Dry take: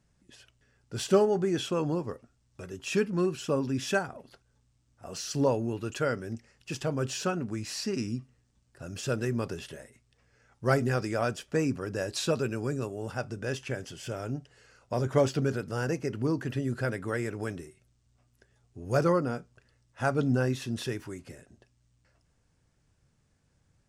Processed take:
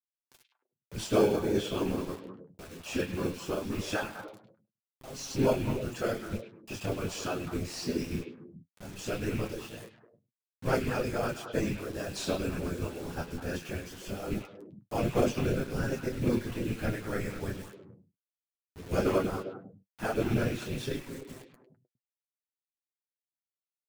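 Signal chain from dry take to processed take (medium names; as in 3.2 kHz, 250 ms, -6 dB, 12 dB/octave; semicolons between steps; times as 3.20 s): rattle on loud lows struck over -29 dBFS, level -30 dBFS; chorus voices 4, 0.76 Hz, delay 26 ms, depth 2.1 ms; in parallel at -10 dB: sample-and-hold 23×; on the sum: whisper effect; word length cut 8-bit, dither none; flange 0.19 Hz, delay 7.2 ms, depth 4.9 ms, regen +34%; on a send: repeats whose band climbs or falls 102 ms, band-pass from 2.9 kHz, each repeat -1.4 oct, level -4.5 dB; on the sum: trim +2.5 dB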